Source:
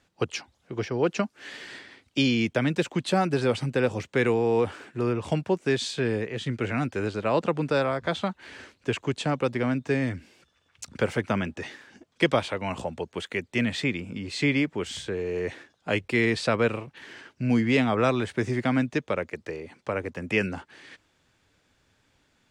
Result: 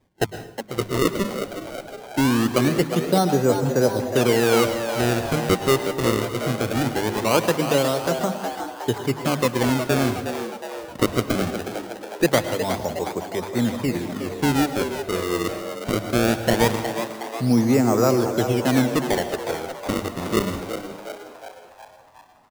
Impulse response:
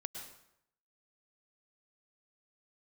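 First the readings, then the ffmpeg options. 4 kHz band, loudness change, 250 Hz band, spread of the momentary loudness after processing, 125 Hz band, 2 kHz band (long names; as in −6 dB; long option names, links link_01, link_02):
+5.0 dB, +4.5 dB, +5.0 dB, 11 LU, +4.5 dB, +1.5 dB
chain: -filter_complex "[0:a]lowpass=1200,bandreject=frequency=50:width_type=h:width=6,bandreject=frequency=100:width_type=h:width=6,bandreject=frequency=150:width_type=h:width=6,bandreject=frequency=200:width_type=h:width=6,acrusher=samples=31:mix=1:aa=0.000001:lfo=1:lforange=49.6:lforate=0.21,asplit=8[link_01][link_02][link_03][link_04][link_05][link_06][link_07][link_08];[link_02]adelay=364,afreqshift=110,volume=-9dB[link_09];[link_03]adelay=728,afreqshift=220,volume=-14dB[link_10];[link_04]adelay=1092,afreqshift=330,volume=-19.1dB[link_11];[link_05]adelay=1456,afreqshift=440,volume=-24.1dB[link_12];[link_06]adelay=1820,afreqshift=550,volume=-29.1dB[link_13];[link_07]adelay=2184,afreqshift=660,volume=-34.2dB[link_14];[link_08]adelay=2548,afreqshift=770,volume=-39.2dB[link_15];[link_01][link_09][link_10][link_11][link_12][link_13][link_14][link_15]amix=inputs=8:normalize=0,asplit=2[link_16][link_17];[1:a]atrim=start_sample=2205[link_18];[link_17][link_18]afir=irnorm=-1:irlink=0,volume=0.5dB[link_19];[link_16][link_19]amix=inputs=2:normalize=0"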